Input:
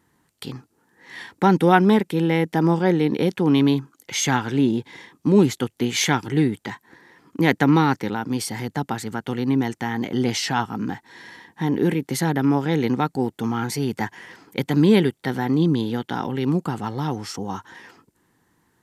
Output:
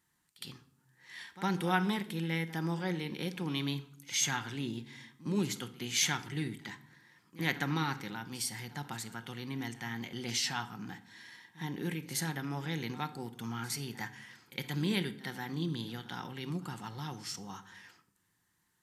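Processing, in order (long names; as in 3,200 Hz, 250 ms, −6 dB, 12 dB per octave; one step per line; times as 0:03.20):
guitar amp tone stack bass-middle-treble 5-5-5
backwards echo 61 ms −17.5 dB
on a send at −9.5 dB: convolution reverb RT60 0.70 s, pre-delay 6 ms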